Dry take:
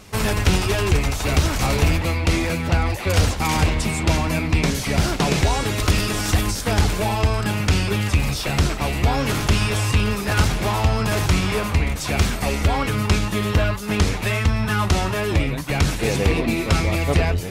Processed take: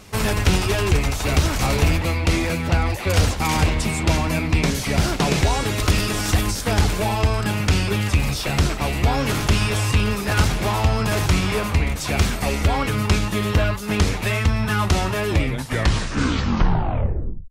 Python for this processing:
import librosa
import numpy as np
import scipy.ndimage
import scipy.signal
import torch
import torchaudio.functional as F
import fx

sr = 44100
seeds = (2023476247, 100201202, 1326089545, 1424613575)

y = fx.tape_stop_end(x, sr, length_s=2.11)